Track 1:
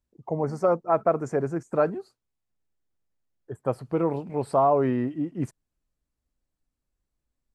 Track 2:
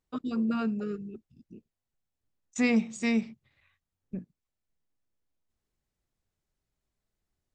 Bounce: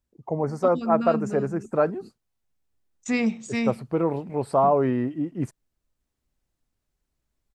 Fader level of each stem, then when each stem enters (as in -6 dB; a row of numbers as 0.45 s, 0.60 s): +1.0 dB, +1.0 dB; 0.00 s, 0.50 s